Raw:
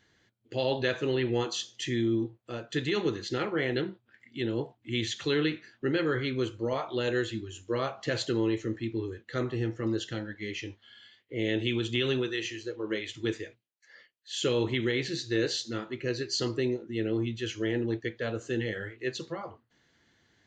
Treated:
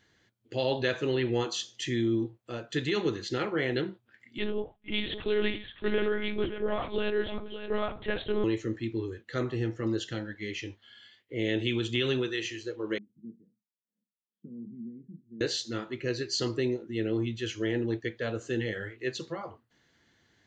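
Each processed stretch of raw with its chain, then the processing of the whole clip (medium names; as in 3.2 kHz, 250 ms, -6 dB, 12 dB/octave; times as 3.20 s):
4.38–8.44 s: delay 573 ms -10 dB + monotone LPC vocoder at 8 kHz 210 Hz
12.98–15.41 s: Butterworth band-pass 200 Hz, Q 3.5 + doubling 25 ms -12 dB
whole clip: none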